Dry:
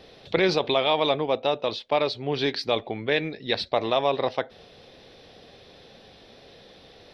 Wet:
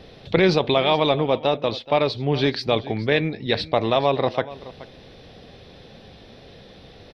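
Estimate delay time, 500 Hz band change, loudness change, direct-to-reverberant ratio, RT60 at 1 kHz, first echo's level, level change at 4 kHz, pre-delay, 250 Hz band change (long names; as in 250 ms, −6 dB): 426 ms, +3.5 dB, +4.0 dB, no reverb audible, no reverb audible, −17.5 dB, +2.0 dB, no reverb audible, +6.5 dB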